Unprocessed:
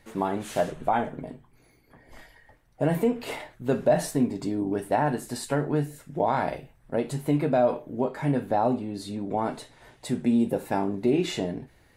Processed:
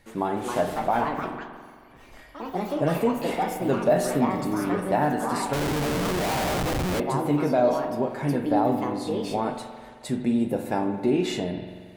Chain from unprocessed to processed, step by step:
delay with pitch and tempo change per echo 314 ms, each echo +4 semitones, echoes 3, each echo −6 dB
spring reverb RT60 1.8 s, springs 44 ms, chirp 40 ms, DRR 6.5 dB
0:05.53–0:07.00: comparator with hysteresis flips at −31.5 dBFS

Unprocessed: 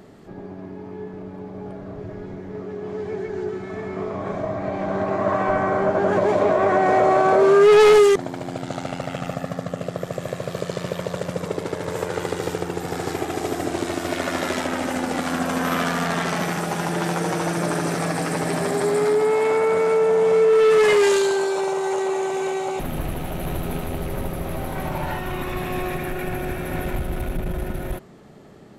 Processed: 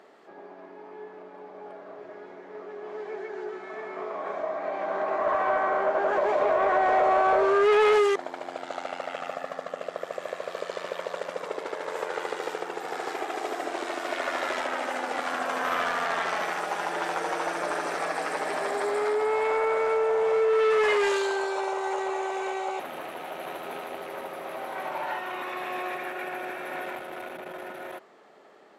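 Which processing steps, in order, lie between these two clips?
high-pass filter 430 Hz 12 dB per octave
mid-hump overdrive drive 13 dB, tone 1,900 Hz, clips at −4 dBFS
level −7 dB

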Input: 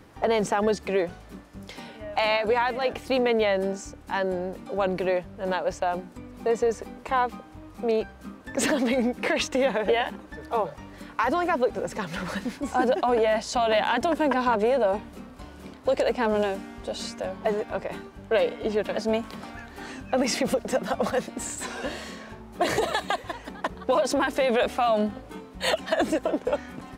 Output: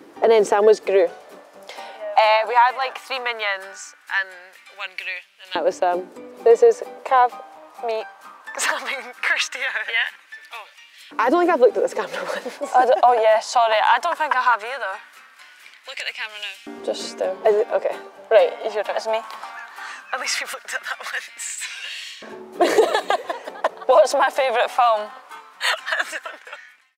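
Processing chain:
fade-out on the ending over 0.78 s
auto-filter high-pass saw up 0.18 Hz 320–2,900 Hz
level +4 dB

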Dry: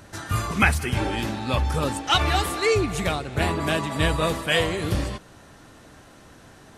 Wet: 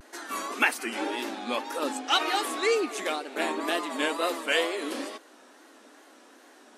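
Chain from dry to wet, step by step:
linear-phase brick-wall high-pass 230 Hz
tape wow and flutter 110 cents
level −3.5 dB

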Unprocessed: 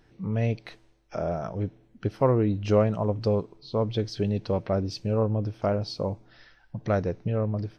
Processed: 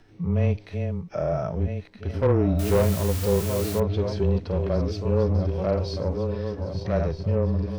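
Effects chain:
feedback delay that plays each chunk backwards 635 ms, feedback 64%, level −9 dB
in parallel at −2 dB: output level in coarse steps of 20 dB
on the sum: frequency shifter −17 Hz
0:02.59–0:03.80: bit-depth reduction 6 bits, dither triangular
soft clipping −17 dBFS, distortion −10 dB
harmonic and percussive parts rebalanced percussive −12 dB
level +4.5 dB

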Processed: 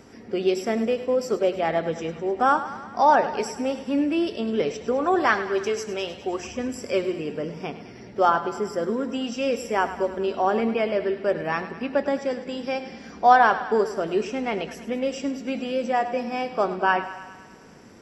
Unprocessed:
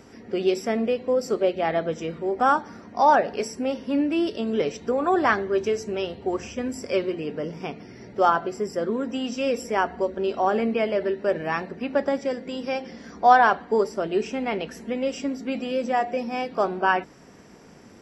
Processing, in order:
0:05.20–0:06.47: spectral tilt +1.5 dB per octave
feedback echo with a high-pass in the loop 103 ms, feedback 67%, high-pass 420 Hz, level −12.5 dB

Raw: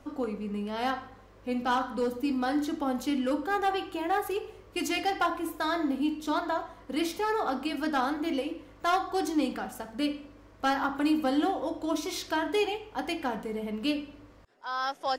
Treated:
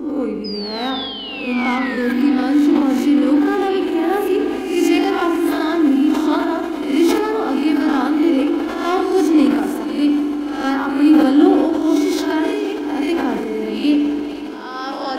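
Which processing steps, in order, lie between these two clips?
peak hold with a rise ahead of every peak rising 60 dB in 0.66 s
parametric band 360 Hz +11.5 dB 0.41 octaves
0:00.44–0:02.13: sound drawn into the spectrogram fall 1,600–5,100 Hz −33 dBFS
0:12.44–0:13.08: downward compressor, threshold −26 dBFS, peak gain reduction 9 dB
hollow resonant body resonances 270/2,200 Hz, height 7 dB, ringing for 30 ms
on a send: feedback delay with all-pass diffusion 518 ms, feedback 78%, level −14 dB
on the sum: spring reverb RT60 1.6 s, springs 41 ms, chirp 30 ms, DRR 7.5 dB
level that may fall only so fast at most 34 dB per second
level +2 dB

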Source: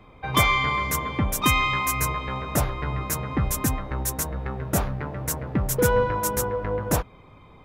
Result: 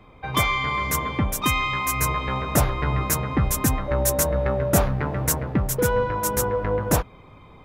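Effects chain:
speech leveller 0.5 s
0:03.87–0:04.85: steady tone 580 Hz −25 dBFS
level +1.5 dB

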